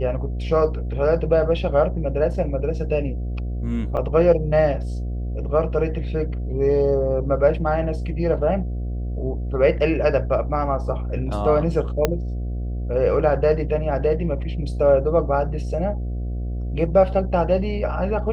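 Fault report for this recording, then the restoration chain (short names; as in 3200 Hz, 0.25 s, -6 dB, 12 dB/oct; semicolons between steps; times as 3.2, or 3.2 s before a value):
buzz 60 Hz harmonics 12 -26 dBFS
3.97–3.98 gap 6 ms
12.05 pop -4 dBFS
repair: de-click; de-hum 60 Hz, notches 12; interpolate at 3.97, 6 ms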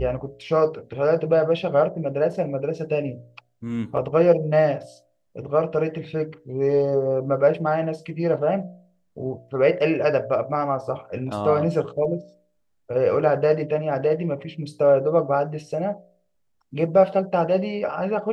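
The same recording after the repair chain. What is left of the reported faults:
12.05 pop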